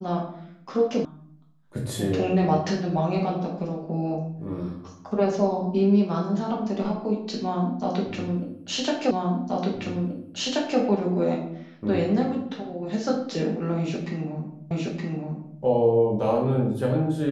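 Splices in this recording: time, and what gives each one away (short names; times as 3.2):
1.05 sound cut off
9.11 repeat of the last 1.68 s
14.71 repeat of the last 0.92 s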